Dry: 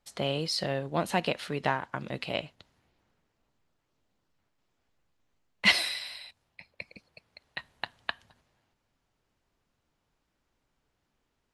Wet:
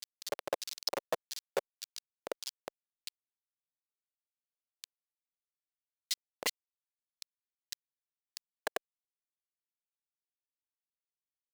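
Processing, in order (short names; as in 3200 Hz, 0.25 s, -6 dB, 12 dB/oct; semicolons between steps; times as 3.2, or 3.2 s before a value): grains 55 ms, grains 20/s, spray 0.858 s; Schmitt trigger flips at -28 dBFS; LFO high-pass square 1.7 Hz 540–4600 Hz; gain +11.5 dB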